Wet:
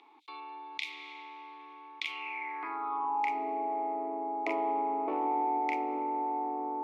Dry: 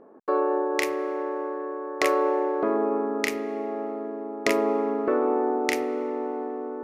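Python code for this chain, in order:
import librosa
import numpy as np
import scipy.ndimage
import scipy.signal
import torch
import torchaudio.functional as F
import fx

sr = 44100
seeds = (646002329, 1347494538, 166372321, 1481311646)

p1 = fx.filter_sweep_highpass(x, sr, from_hz=3600.0, to_hz=620.0, start_s=2.0, end_s=3.5, q=7.0)
p2 = 10.0 ** (-18.0 / 20.0) * np.tanh(p1 / 10.0 ** (-18.0 / 20.0))
p3 = p1 + F.gain(torch.from_numpy(p2), -5.0).numpy()
p4 = fx.vowel_filter(p3, sr, vowel='u')
y = fx.env_flatten(p4, sr, amount_pct=50)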